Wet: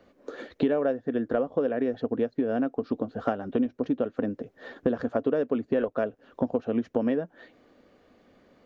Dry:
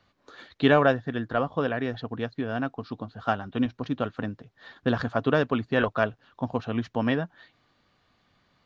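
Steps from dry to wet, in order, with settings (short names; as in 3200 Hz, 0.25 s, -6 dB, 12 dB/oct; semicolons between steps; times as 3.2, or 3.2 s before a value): ten-band EQ 125 Hz -8 dB, 250 Hz +8 dB, 500 Hz +12 dB, 1000 Hz -5 dB, 4000 Hz -8 dB; compressor 6:1, threshold -28 dBFS, peak gain reduction 20 dB; gain +4.5 dB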